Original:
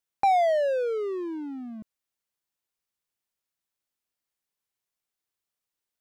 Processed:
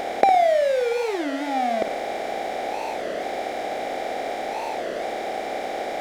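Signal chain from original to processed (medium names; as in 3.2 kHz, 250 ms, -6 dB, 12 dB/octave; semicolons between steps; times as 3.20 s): spectral levelling over time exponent 0.2; on a send: flutter echo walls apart 9.6 m, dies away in 0.38 s; on the sum: warped record 33 1/3 rpm, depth 250 cents; trim +1.5 dB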